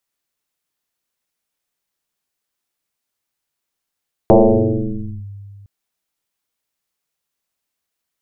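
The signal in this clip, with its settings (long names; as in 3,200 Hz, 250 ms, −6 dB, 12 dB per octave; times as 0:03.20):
two-operator FM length 1.36 s, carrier 100 Hz, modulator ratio 1.11, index 6.1, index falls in 0.96 s linear, decay 2.34 s, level −4 dB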